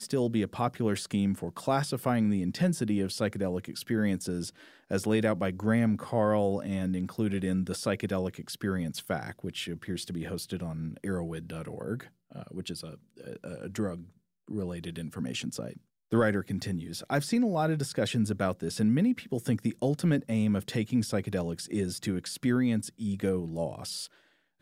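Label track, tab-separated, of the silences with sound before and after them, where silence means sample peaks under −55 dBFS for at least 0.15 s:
12.100000	12.300000	silence
14.170000	14.480000	silence
15.800000	16.110000	silence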